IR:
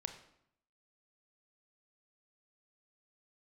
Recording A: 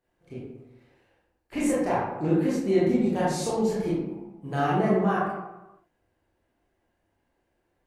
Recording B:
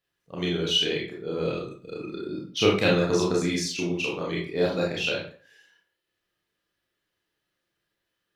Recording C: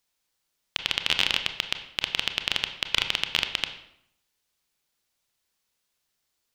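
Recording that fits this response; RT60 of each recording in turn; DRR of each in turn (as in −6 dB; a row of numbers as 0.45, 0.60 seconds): C; 1.0, 0.45, 0.70 seconds; −8.5, −4.5, 6.5 decibels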